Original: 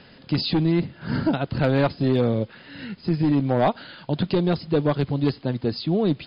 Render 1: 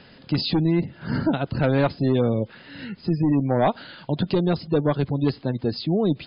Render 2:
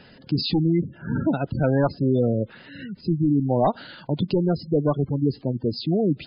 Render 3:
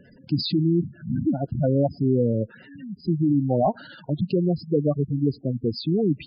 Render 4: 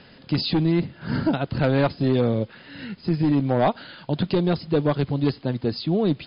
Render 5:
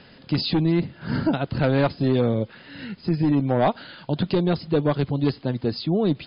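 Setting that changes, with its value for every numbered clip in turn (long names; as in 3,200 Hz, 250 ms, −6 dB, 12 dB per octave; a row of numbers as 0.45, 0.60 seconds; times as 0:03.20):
gate on every frequency bin, under each frame's peak: −35, −20, −10, −60, −45 decibels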